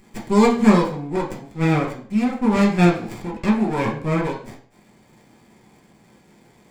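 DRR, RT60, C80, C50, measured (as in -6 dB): -2.5 dB, 0.50 s, 12.5 dB, 8.5 dB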